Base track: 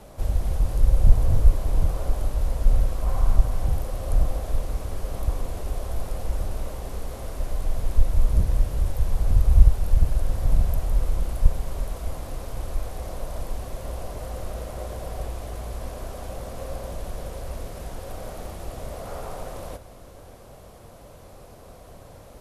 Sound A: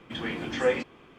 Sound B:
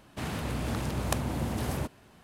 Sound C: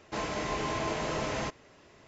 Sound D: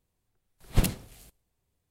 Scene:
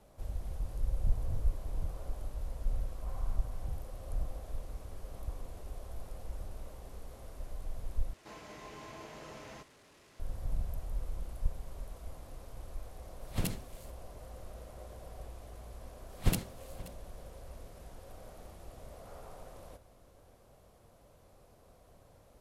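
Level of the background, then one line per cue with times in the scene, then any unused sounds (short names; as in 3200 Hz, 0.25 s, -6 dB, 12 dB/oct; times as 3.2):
base track -15 dB
8.13 replace with C -16 dB + delta modulation 64 kbps, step -39.5 dBFS
12.61 add D -4.5 dB + limiter -15.5 dBFS
15.49 add D -5 dB + echo 0.528 s -18.5 dB
not used: A, B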